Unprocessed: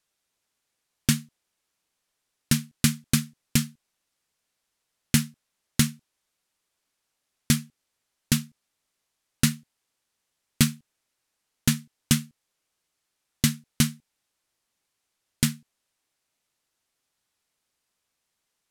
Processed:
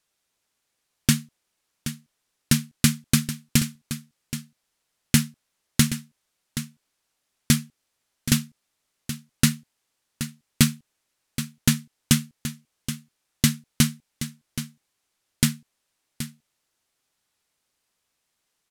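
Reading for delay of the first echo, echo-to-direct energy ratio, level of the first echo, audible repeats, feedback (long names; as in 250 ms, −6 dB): 775 ms, −11.5 dB, −11.5 dB, 1, repeats not evenly spaced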